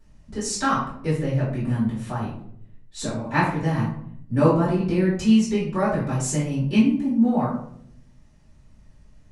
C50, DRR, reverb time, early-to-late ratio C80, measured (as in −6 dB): 3.0 dB, −11.0 dB, 0.65 s, 7.5 dB